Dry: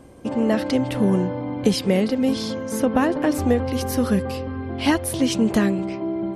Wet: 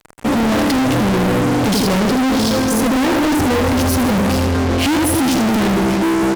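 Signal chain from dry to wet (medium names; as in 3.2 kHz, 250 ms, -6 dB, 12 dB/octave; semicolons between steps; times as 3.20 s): dynamic bell 290 Hz, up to +7 dB, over -32 dBFS, Q 0.76; on a send: feedback delay 81 ms, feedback 46%, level -7 dB; on the sum: fuzz box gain 38 dB, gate -39 dBFS; trim -1 dB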